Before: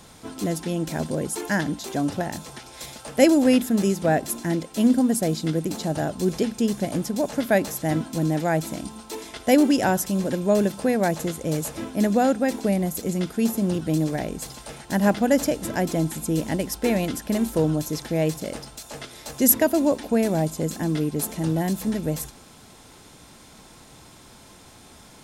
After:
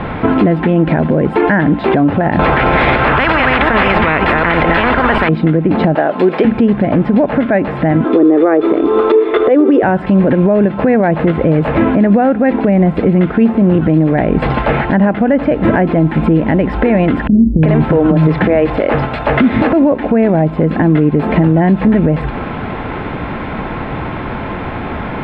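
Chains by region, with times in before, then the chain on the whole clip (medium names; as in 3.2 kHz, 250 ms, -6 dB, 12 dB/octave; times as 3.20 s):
2.39–5.29 s: chunks repeated in reverse 186 ms, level -10.5 dB + tilt EQ -2 dB/octave + spectrum-flattening compressor 10:1
5.95–6.45 s: high-pass 400 Hz + treble shelf 5.7 kHz +8 dB
8.04–9.83 s: resonant low shelf 240 Hz -11 dB, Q 3 + compression 4:1, threshold -20 dBFS + small resonant body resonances 430/1200/3500 Hz, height 15 dB, ringing for 35 ms
17.27–19.72 s: compression 12:1, threshold -21 dBFS + bands offset in time lows, highs 360 ms, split 270 Hz
whole clip: inverse Chebyshev low-pass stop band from 5.8 kHz, stop band 50 dB; compression 12:1, threshold -33 dBFS; loudness maximiser +30 dB; trim -1 dB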